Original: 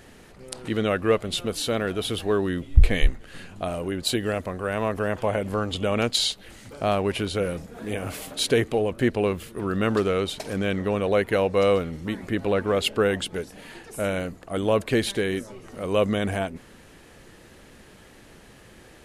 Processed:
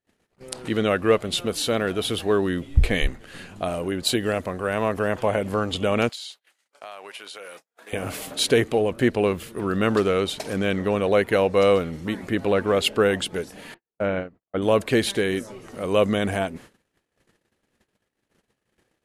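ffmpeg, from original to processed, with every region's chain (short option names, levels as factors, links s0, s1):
-filter_complex "[0:a]asettb=1/sr,asplit=3[s0][s1][s2];[s0]atrim=end=6.094[s3];[s1]atrim=start=6.09:end=7.93,asetpts=PTS-STARTPTS,afade=t=in:d=0.004:c=qsin,afade=t=out:st=1.836:d=0.004:c=qsin,highpass=830,acompressor=threshold=0.0112:ratio=4:attack=3.2:release=140:knee=1:detection=peak[s4];[s2]atrim=start=7.926[s5];[s3][s4]acrossfade=d=0.004:c1=hsin:c2=qsin[s6];[s6][s5]acrossfade=d=0.004:c1=qsin:c2=hsin,asettb=1/sr,asplit=3[s7][s8][s9];[s7]atrim=end=13.744[s10];[s8]atrim=start=13.74:end=14.62,asetpts=PTS-STARTPTS,afade=t=in:d=0.004:c=qsin,afade=t=out:st=0.876:d=0.004:c=qsin,lowpass=2100,acompressor=mode=upward:threshold=0.0316:ratio=2.5:attack=3.2:release=140:knee=2.83:detection=peak,agate=range=0.112:threshold=0.0355:ratio=16:release=100:detection=peak[s11];[s9]atrim=start=14.616[s12];[s10][s11]acrossfade=d=0.004:c1=hsin:c2=qsin[s13];[s13][s12]acrossfade=d=0.004:c1=qsin:c2=hsin,agate=range=0.00891:threshold=0.00562:ratio=16:detection=peak,lowshelf=f=64:g=-9.5,volume=1.33"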